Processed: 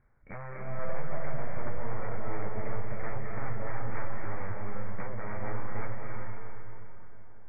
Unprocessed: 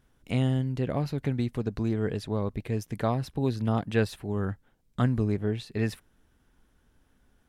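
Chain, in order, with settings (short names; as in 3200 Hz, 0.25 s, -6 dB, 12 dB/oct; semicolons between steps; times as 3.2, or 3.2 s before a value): in parallel at -5.5 dB: sample-and-hold 19×; on the sum: bell 1700 Hz +3.5 dB 2.2 oct; wavefolder -25 dBFS; Chebyshev low-pass 2300 Hz, order 8; bell 280 Hz -9.5 dB 1.3 oct; compressor, threshold -35 dBFS, peak gain reduction 6 dB; darkening echo 0.92 s, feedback 46%, low-pass 1800 Hz, level -20.5 dB; reverb RT60 3.3 s, pre-delay 0.175 s, DRR -2 dB; flange 0.35 Hz, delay 8.4 ms, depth 4.3 ms, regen -51%; gain +1 dB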